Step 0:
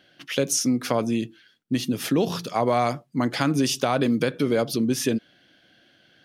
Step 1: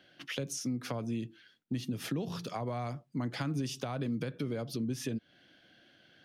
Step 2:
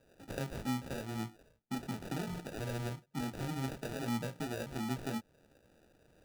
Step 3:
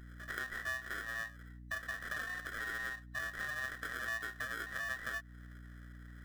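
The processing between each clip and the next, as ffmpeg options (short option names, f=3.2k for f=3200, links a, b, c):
-filter_complex "[0:a]highshelf=f=6.9k:g=-5,acrossover=split=150[a][b];[b]acompressor=threshold=-33dB:ratio=5[c];[a][c]amix=inputs=2:normalize=0,volume=-3.5dB"
-af "flanger=delay=17:depth=6.6:speed=0.71,acrusher=samples=41:mix=1:aa=0.000001"
-af "afftfilt=real='real(if(between(b,1,1012),(2*floor((b-1)/92)+1)*92-b,b),0)':imag='imag(if(between(b,1,1012),(2*floor((b-1)/92)+1)*92-b,b),0)*if(between(b,1,1012),-1,1)':win_size=2048:overlap=0.75,aeval=exprs='val(0)+0.00224*(sin(2*PI*60*n/s)+sin(2*PI*2*60*n/s)/2+sin(2*PI*3*60*n/s)/3+sin(2*PI*4*60*n/s)/4+sin(2*PI*5*60*n/s)/5)':c=same,acompressor=threshold=-44dB:ratio=2,volume=3dB"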